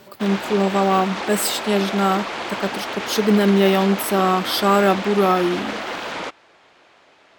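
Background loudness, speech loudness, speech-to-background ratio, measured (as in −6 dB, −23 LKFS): −27.5 LKFS, −19.5 LKFS, 8.0 dB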